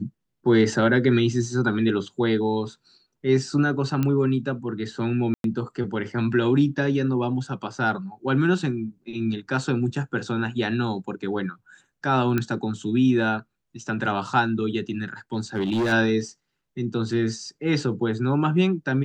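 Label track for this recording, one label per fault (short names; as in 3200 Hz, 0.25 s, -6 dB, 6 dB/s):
4.030000	4.030000	pop -12 dBFS
5.340000	5.440000	gap 0.102 s
12.380000	12.380000	pop -11 dBFS
15.330000	15.930000	clipped -20 dBFS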